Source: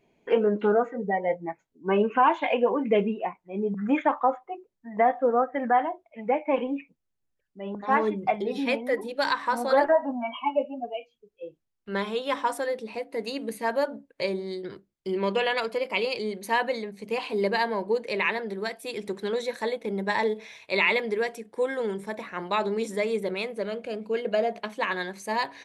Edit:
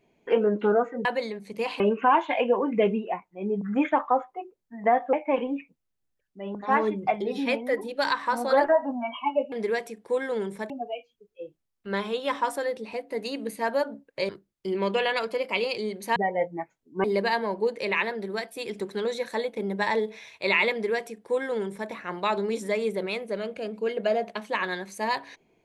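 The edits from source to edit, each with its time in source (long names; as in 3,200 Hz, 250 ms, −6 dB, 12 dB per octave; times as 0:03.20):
0:01.05–0:01.93: swap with 0:16.57–0:17.32
0:05.26–0:06.33: remove
0:14.31–0:14.70: remove
0:21.00–0:22.18: duplicate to 0:10.72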